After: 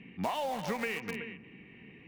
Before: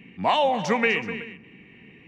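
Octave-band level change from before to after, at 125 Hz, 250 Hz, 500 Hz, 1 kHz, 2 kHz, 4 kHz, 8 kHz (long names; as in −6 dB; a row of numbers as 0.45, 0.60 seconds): −7.0, −9.0, −12.0, −12.5, −12.0, −13.0, −6.0 decibels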